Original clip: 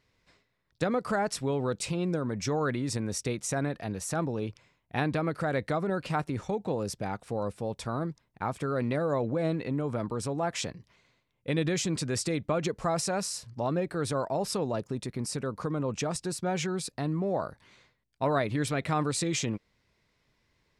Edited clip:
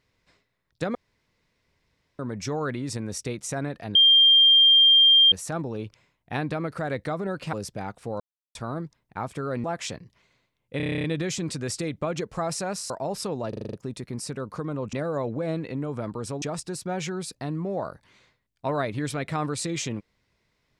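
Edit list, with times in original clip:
0.95–2.19 room tone
3.95 add tone 3190 Hz -12.5 dBFS 1.37 s
6.16–6.78 cut
7.45–7.8 mute
8.89–10.38 move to 15.99
11.51 stutter 0.03 s, 10 plays
13.37–14.2 cut
14.79 stutter 0.04 s, 7 plays

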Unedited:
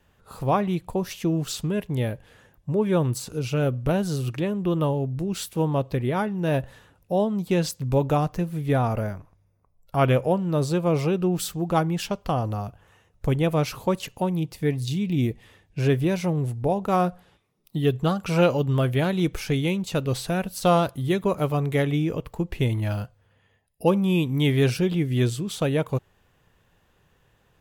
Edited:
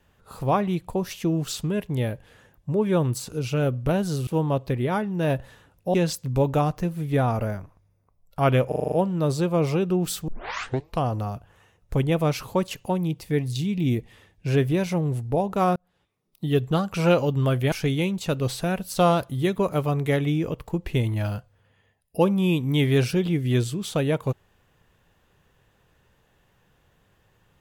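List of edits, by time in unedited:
4.27–5.51 cut
7.18–7.5 cut
10.24 stutter 0.04 s, 7 plays
11.6 tape start 0.74 s
17.08–17.85 fade in
19.04–19.38 cut

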